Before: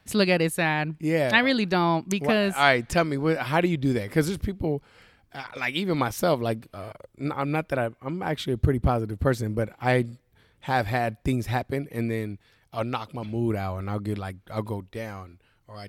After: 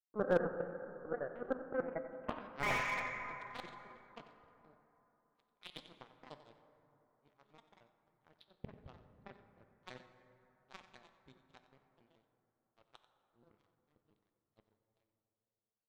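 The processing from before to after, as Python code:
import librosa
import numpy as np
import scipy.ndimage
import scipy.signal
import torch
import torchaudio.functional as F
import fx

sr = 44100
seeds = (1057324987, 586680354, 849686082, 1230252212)

p1 = fx.pitch_trill(x, sr, semitones=6.5, every_ms=75)
p2 = fx.filter_sweep_lowpass(p1, sr, from_hz=500.0, to_hz=4000.0, start_s=1.84, end_s=2.99, q=7.6)
p3 = fx.power_curve(p2, sr, exponent=3.0)
p4 = fx.spacing_loss(p3, sr, db_at_10k=22)
p5 = p4 + fx.echo_single(p4, sr, ms=91, db=-14.0, dry=0)
p6 = fx.rev_plate(p5, sr, seeds[0], rt60_s=3.5, hf_ratio=0.35, predelay_ms=0, drr_db=8.5)
p7 = fx.slew_limit(p6, sr, full_power_hz=34.0)
y = p7 * librosa.db_to_amplitude(1.5)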